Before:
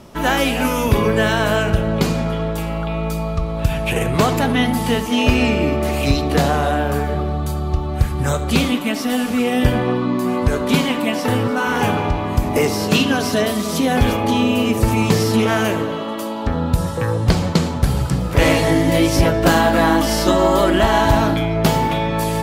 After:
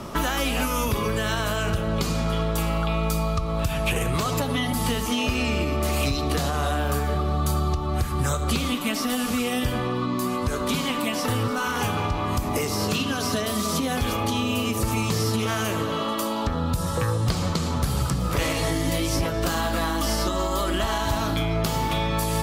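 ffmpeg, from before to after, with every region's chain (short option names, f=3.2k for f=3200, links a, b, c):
-filter_complex "[0:a]asettb=1/sr,asplit=3[a][b][c];[a]atrim=end=4.254[d];[b]atrim=start=4.25:end=4.73,asetpts=PTS-STARTPTS,afade=t=in:d=0.004:c=qsin,afade=t=out:st=0.476:d=0.004:c=qsin,equalizer=f=530:t=o:w=0.22:g=9.5,aecho=1:1:7.1:0.84,atrim=end_sample=21168[e];[c]atrim=start=4.726[f];[d][e]acrossfade=d=0.004:c1=hsin:c2=qsin[g];[g][f]acrossfade=d=0.004:c1=qsin:c2=hsin,equalizer=f=1.2k:w=4.6:g=8.5,alimiter=limit=-12dB:level=0:latency=1:release=395,acrossover=split=95|3200[h][i][j];[h]acompressor=threshold=-33dB:ratio=4[k];[i]acompressor=threshold=-32dB:ratio=4[l];[j]acompressor=threshold=-36dB:ratio=4[m];[k][l][m]amix=inputs=3:normalize=0,volume=6dB"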